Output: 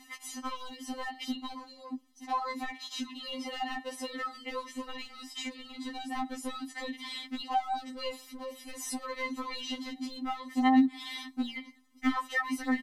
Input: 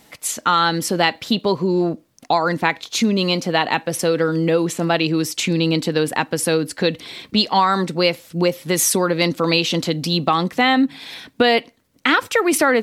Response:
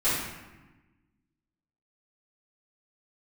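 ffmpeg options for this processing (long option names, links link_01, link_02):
-filter_complex "[0:a]asettb=1/sr,asplit=3[link_01][link_02][link_03];[link_01]atrim=end=2.384[link_04];[link_02]atrim=start=2.38:end=4.53,asetpts=PTS-STARTPTS,afade=type=in:duration=0.004:curve=qsin,afade=type=out:start_time=2.146:duration=0.004:curve=qsin,highpass=240[link_05];[link_03]atrim=start=4.526[link_06];[link_04][link_05]acrossfade=duration=0.004:curve1=hsin:curve2=qsin[link_07];[link_07][link_06]acrossfade=duration=0.004:curve1=qsin:curve2=hsin,deesser=0.85,lowpass=12000,aecho=1:1:1:0.79,acompressor=threshold=-22dB:ratio=8,volume=19.5dB,asoftclip=hard,volume=-19.5dB,afftfilt=real='re*3.46*eq(mod(b,12),0)':imag='im*3.46*eq(mod(b,12),0)':win_size=2048:overlap=0.75,volume=-4dB"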